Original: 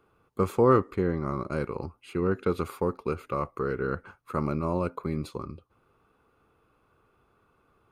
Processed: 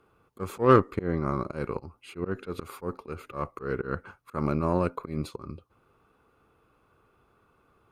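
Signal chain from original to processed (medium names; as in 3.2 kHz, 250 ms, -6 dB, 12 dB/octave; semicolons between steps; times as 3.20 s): Chebyshev shaper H 3 -19 dB, 6 -35 dB, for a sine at -10 dBFS; slow attack 144 ms; trim +5 dB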